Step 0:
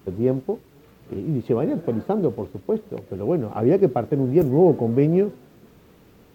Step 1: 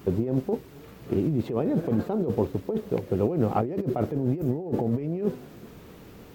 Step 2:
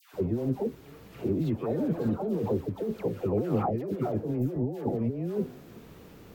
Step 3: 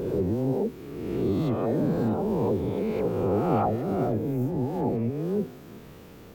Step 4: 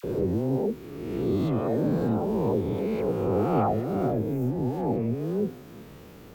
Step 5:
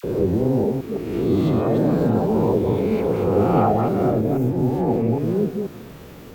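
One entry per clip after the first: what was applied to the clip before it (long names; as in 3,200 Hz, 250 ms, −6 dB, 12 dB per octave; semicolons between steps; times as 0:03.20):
compressor whose output falls as the input rises −26 dBFS, ratio −1
all-pass dispersion lows, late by 143 ms, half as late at 1,000 Hz; level −3 dB
peak hold with a rise ahead of every peak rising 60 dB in 1.56 s
all-pass dispersion lows, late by 43 ms, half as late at 1,100 Hz
delay that plays each chunk backwards 162 ms, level −4.5 dB; level +5.5 dB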